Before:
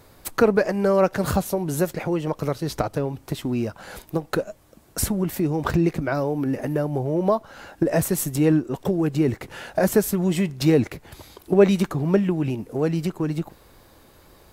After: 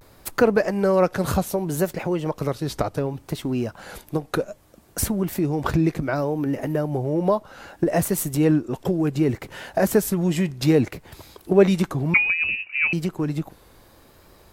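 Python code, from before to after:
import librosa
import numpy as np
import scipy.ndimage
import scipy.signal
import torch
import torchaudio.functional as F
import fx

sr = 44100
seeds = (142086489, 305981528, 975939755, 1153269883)

y = fx.freq_invert(x, sr, carrier_hz=2700, at=(12.13, 12.94))
y = fx.vibrato(y, sr, rate_hz=0.65, depth_cents=70.0)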